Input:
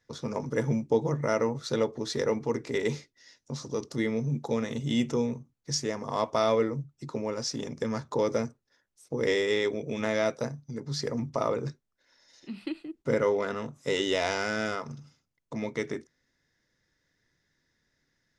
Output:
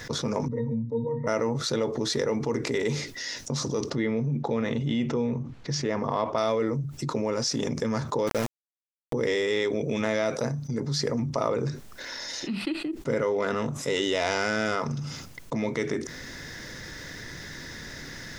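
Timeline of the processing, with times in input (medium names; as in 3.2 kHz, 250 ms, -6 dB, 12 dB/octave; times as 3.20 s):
0.48–1.27 s: pitch-class resonator A#, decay 0.17 s
3.90–6.38 s: low-pass 3.3 kHz
8.27–9.13 s: small samples zeroed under -30 dBFS
whole clip: level flattener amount 70%; trim -2.5 dB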